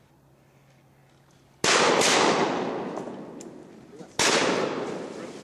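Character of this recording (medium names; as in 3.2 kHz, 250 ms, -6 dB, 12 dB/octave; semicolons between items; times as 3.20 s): noise floor -59 dBFS; spectral tilt -2.0 dB/octave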